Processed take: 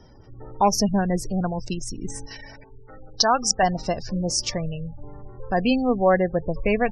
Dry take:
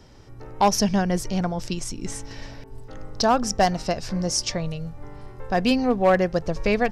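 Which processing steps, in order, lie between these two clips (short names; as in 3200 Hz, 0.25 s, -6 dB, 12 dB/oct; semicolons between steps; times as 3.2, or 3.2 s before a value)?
spectral gate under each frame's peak -25 dB strong; 2.26–3.63 tilt shelf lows -7.5 dB, about 830 Hz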